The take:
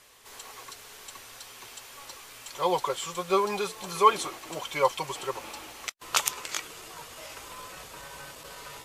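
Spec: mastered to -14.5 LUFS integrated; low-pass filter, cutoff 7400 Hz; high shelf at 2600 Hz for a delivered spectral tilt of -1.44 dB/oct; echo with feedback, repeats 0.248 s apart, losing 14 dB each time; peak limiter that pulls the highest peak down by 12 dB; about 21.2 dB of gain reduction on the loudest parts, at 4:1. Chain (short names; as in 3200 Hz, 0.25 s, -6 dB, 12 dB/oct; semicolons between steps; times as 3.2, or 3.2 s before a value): LPF 7400 Hz; high shelf 2600 Hz +3.5 dB; compressor 4:1, threshold -40 dBFS; limiter -32.5 dBFS; feedback echo 0.248 s, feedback 20%, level -14 dB; gain +29 dB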